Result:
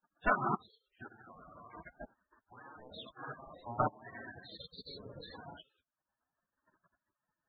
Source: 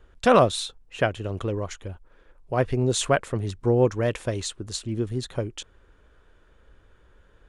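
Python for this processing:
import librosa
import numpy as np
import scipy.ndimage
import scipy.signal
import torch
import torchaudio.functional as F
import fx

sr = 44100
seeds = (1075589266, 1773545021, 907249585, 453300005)

y = fx.rev_gated(x, sr, seeds[0], gate_ms=210, shape='flat', drr_db=-2.0)
y = fx.level_steps(y, sr, step_db=16)
y = fx.highpass(y, sr, hz=440.0, slope=6)
y = fx.spacing_loss(y, sr, db_at_10k=32)
y = fx.over_compress(y, sr, threshold_db=-44.0, ratio=-1.0, at=(1.06, 3.21))
y = fx.transient(y, sr, attack_db=8, sustain_db=-9)
y = np.clip(10.0 ** (14.5 / 20.0) * y, -1.0, 1.0) / 10.0 ** (14.5 / 20.0)
y = fx.spec_topn(y, sr, count=32)
y = fx.high_shelf(y, sr, hz=5300.0, db=7.0)
y = fx.spec_gate(y, sr, threshold_db=-15, keep='weak')
y = F.gain(torch.from_numpy(y), 5.0).numpy()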